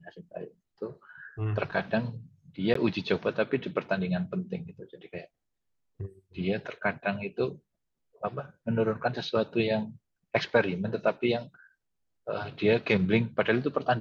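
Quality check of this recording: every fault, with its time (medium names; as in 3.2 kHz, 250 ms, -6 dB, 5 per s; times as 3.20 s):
2.74–2.75 s: dropout 14 ms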